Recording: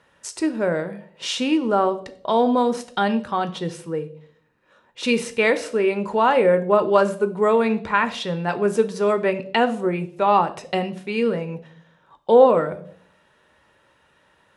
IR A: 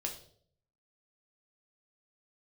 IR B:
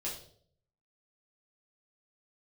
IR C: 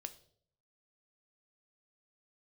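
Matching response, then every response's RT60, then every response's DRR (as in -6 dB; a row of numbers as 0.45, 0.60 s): C; 0.60, 0.60, 0.60 s; 1.0, -6.0, 9.0 dB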